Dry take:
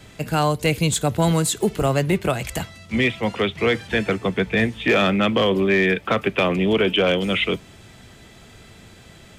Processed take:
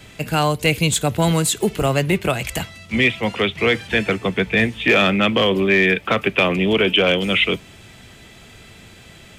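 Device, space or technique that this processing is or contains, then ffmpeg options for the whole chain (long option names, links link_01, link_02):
presence and air boost: -af "equalizer=frequency=2600:width_type=o:width=0.86:gain=5,highshelf=frequency=9400:gain=4,volume=1dB"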